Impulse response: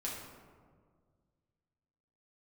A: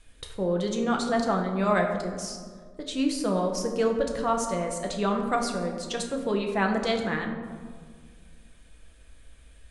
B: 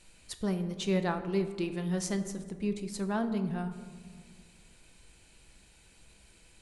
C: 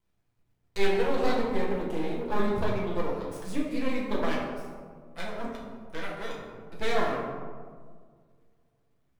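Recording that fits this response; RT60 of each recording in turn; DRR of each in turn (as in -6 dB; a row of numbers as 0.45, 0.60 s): C; 1.8, 1.8, 1.8 s; 2.0, 7.5, -5.0 dB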